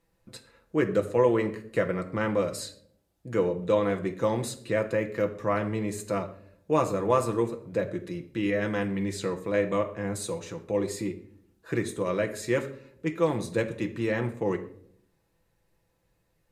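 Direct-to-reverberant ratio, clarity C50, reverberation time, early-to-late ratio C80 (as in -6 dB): 3.5 dB, 13.0 dB, no single decay rate, 16.0 dB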